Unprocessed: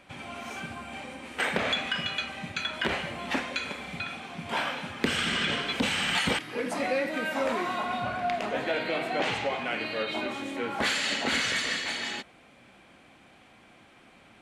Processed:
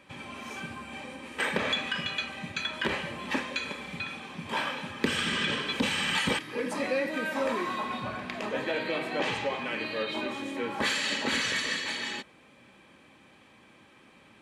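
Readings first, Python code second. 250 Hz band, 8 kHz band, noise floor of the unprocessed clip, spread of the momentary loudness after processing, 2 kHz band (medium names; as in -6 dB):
0.0 dB, -1.0 dB, -56 dBFS, 11 LU, -1.0 dB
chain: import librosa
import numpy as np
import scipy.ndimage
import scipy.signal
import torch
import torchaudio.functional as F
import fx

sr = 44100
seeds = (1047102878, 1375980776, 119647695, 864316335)

y = fx.notch_comb(x, sr, f0_hz=710.0)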